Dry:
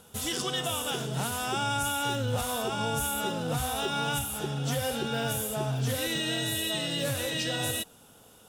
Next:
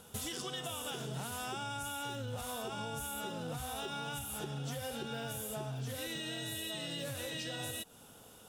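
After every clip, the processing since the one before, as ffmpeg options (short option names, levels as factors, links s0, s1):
-af "acompressor=threshold=0.0158:ratio=10,volume=0.891"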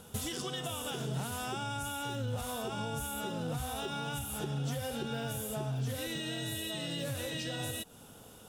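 -af "lowshelf=f=370:g=5,volume=1.19"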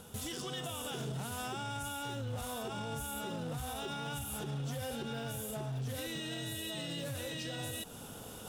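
-af "areverse,acompressor=mode=upward:threshold=0.0112:ratio=2.5,areverse,alimiter=level_in=2.11:limit=0.0631:level=0:latency=1:release=55,volume=0.473,asoftclip=type=hard:threshold=0.02"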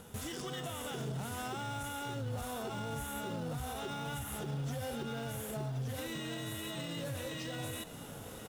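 -filter_complex "[0:a]asplit=2[s0][s1];[s1]acrusher=samples=9:mix=1:aa=0.000001,volume=0.501[s2];[s0][s2]amix=inputs=2:normalize=0,aecho=1:1:1071:0.188,volume=0.708"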